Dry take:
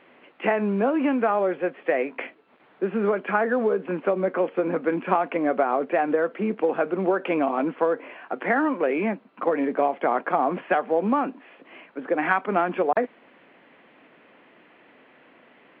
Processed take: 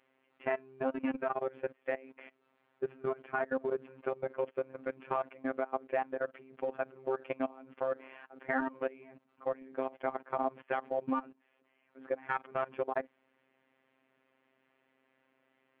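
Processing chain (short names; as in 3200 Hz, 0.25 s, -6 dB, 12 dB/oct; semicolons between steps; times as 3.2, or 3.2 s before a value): level quantiser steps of 22 dB; robotiser 132 Hz; gain -6 dB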